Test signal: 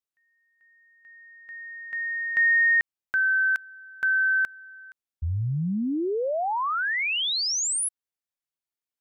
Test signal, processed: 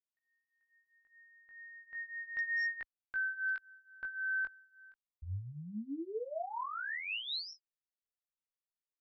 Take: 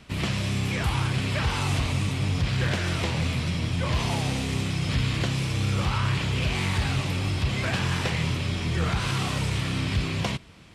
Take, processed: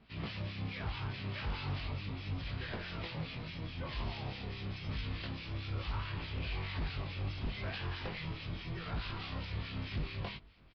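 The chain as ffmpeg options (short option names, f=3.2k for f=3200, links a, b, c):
-filter_complex "[0:a]acrossover=split=1500[a][b];[a]aeval=exprs='val(0)*(1-0.7/2+0.7/2*cos(2*PI*4.7*n/s))':c=same[c];[b]aeval=exprs='val(0)*(1-0.7/2-0.7/2*cos(2*PI*4.7*n/s))':c=same[d];[c][d]amix=inputs=2:normalize=0,asubboost=boost=5.5:cutoff=52,flanger=delay=18:depth=2.7:speed=0.34,aresample=11025,aeval=exprs='0.0708*(abs(mod(val(0)/0.0708+3,4)-2)-1)':c=same,aresample=44100,volume=-7dB"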